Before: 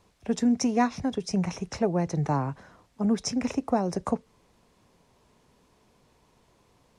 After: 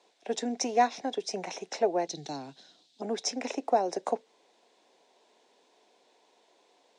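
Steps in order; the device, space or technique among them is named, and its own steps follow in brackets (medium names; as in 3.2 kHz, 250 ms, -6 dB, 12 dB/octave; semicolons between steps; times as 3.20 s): 2.07–3.02 s: ten-band graphic EQ 125 Hz +10 dB, 500 Hz -10 dB, 1 kHz -12 dB, 2 kHz -9 dB, 4 kHz +12 dB; phone speaker on a table (cabinet simulation 330–8300 Hz, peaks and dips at 730 Hz +5 dB, 1.2 kHz -9 dB, 3.7 kHz +6 dB)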